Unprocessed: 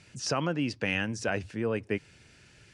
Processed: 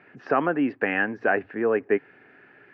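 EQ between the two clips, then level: cabinet simulation 250–2200 Hz, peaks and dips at 270 Hz +7 dB, 410 Hz +8 dB, 750 Hz +9 dB, 1.2 kHz +5 dB, 1.7 kHz +9 dB; +3.0 dB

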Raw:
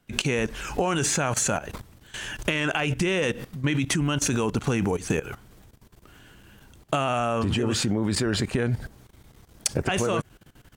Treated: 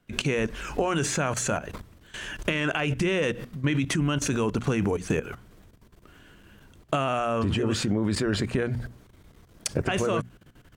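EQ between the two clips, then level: peaking EQ 820 Hz -5.5 dB 0.22 oct; treble shelf 3.8 kHz -6.5 dB; hum notches 60/120/180/240 Hz; 0.0 dB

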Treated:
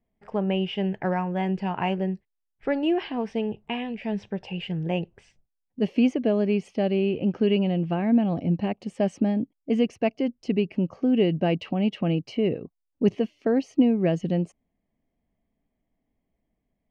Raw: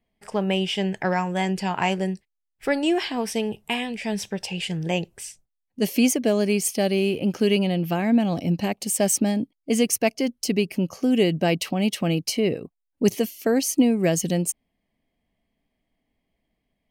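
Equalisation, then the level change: dynamic bell 2.8 kHz, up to +7 dB, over -47 dBFS, Q 6; tape spacing loss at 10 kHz 41 dB; 0.0 dB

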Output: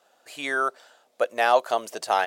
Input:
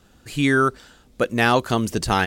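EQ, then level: resonant high-pass 640 Hz, resonance Q 3.5; -6.5 dB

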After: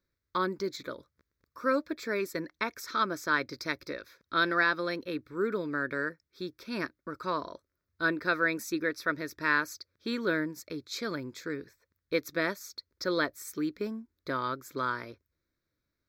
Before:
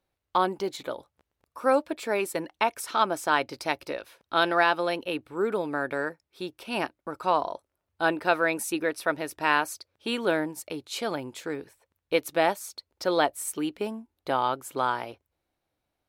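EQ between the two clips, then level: static phaser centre 2.9 kHz, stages 6; 0.0 dB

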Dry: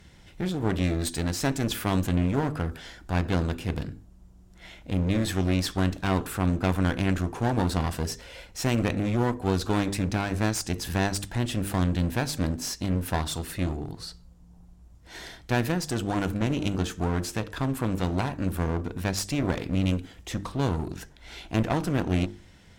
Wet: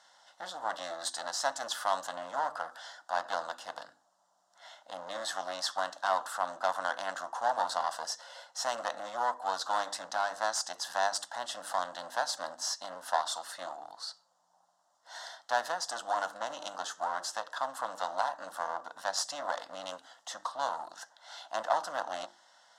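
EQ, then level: Chebyshev high-pass 590 Hz, order 3; low-pass 6.1 kHz 12 dB/octave; static phaser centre 990 Hz, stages 4; +4.0 dB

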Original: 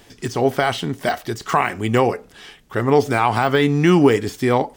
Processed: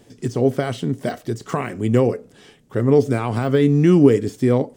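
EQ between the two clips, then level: graphic EQ 125/250/500/8000 Hz +12/+9/+9/+6 dB; dynamic bell 820 Hz, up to -7 dB, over -29 dBFS, Q 3.7; -10.0 dB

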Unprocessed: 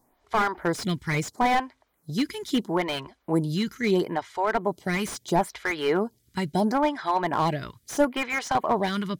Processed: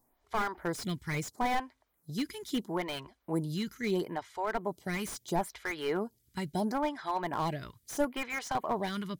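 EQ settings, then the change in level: bass shelf 64 Hz +7 dB; treble shelf 9.3 kHz +8.5 dB; -8.5 dB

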